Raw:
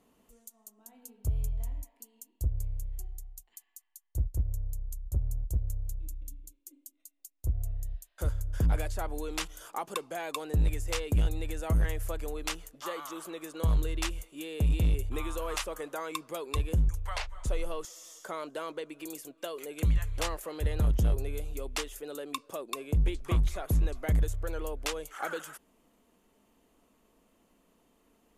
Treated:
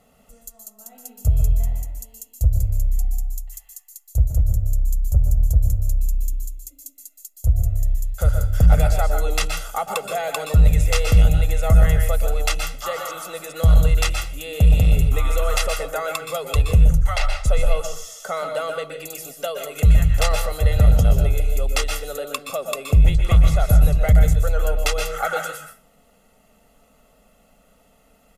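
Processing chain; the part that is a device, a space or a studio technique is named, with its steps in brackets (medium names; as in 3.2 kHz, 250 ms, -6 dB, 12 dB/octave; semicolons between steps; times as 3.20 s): microphone above a desk (comb 1.5 ms, depth 84%; reverberation RT60 0.35 s, pre-delay 118 ms, DRR 4.5 dB); trim +8 dB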